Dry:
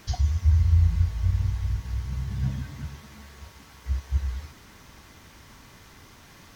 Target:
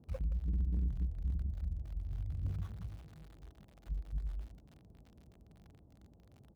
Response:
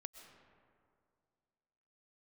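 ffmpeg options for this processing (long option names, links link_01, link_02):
-filter_complex "[0:a]aresample=8000,asoftclip=type=tanh:threshold=-23dB,aresample=44100,lowpass=2400,asetrate=32097,aresample=44100,atempo=1.37395,highpass=frequency=45:width=0.5412,highpass=frequency=45:width=1.3066,aecho=1:1:168:0.158,acrossover=split=540[link_01][link_02];[link_02]aeval=exprs='val(0)*gte(abs(val(0)),0.00355)':channel_layout=same[link_03];[link_01][link_03]amix=inputs=2:normalize=0,volume=-6dB"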